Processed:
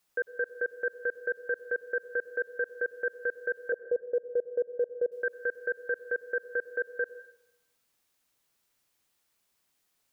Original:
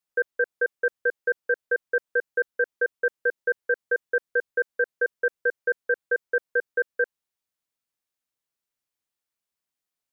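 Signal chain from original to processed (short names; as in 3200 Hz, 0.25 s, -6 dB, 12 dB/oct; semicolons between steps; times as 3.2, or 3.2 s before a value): 3.72–5.12 Chebyshev low-pass 640 Hz, order 3; in parallel at -1.5 dB: negative-ratio compressor -33 dBFS, ratio -1; on the sum: limiter -21.5 dBFS, peak gain reduction 9 dB; plate-style reverb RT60 0.81 s, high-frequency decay 1×, pre-delay 90 ms, DRR 15 dB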